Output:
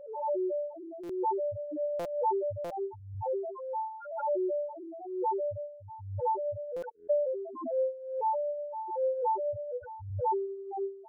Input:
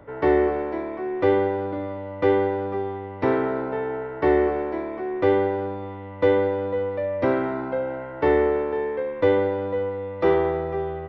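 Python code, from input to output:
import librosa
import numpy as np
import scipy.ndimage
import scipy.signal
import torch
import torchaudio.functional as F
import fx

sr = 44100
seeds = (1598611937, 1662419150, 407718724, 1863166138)

y = np.minimum(x, 2.0 * 10.0 ** (-19.5 / 20.0) - x)
y = fx.highpass(y, sr, hz=80.0, slope=6)
y = fx.low_shelf(y, sr, hz=390.0, db=-8.5)
y = fx.echo_stepped(y, sr, ms=198, hz=3300.0, octaves=-0.7, feedback_pct=70, wet_db=-11)
y = fx.room_shoebox(y, sr, seeds[0], volume_m3=170.0, walls='furnished', distance_m=4.6)
y = fx.dereverb_blind(y, sr, rt60_s=0.98)
y = fx.spec_topn(y, sr, count=1)
y = fx.rider(y, sr, range_db=3, speed_s=2.0)
y = fx.spec_erase(y, sr, start_s=6.89, length_s=0.21, low_hz=460.0, high_hz=1400.0)
y = fx.dynamic_eq(y, sr, hz=730.0, q=1.4, threshold_db=-46.0, ratio=4.0, max_db=4)
y = fx.buffer_glitch(y, sr, at_s=(1.03, 1.99, 2.64, 6.76), block=256, repeats=10)
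y = fx.pre_swell(y, sr, db_per_s=67.0)
y = y * 10.0 ** (-8.5 / 20.0)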